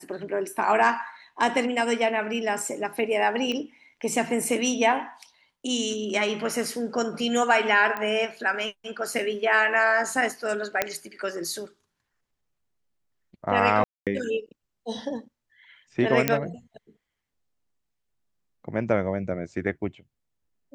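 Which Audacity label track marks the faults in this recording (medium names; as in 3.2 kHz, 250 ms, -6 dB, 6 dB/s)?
3.520000	3.520000	pop -18 dBFS
7.970000	7.970000	pop -17 dBFS
10.820000	10.820000	pop -7 dBFS
13.840000	14.070000	dropout 227 ms
16.280000	16.280000	pop -5 dBFS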